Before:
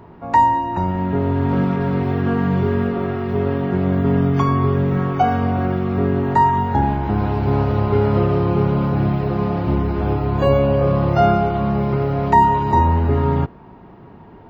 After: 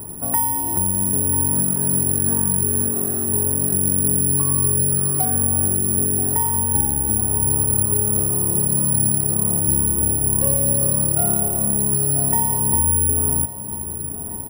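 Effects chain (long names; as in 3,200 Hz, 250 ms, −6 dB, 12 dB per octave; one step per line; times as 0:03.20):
low-shelf EQ 490 Hz +11.5 dB
downward compressor 3 to 1, threshold −21 dBFS, peak gain reduction 14 dB
repeating echo 991 ms, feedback 58%, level −14 dB
bad sample-rate conversion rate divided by 4×, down filtered, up zero stuff
level −5.5 dB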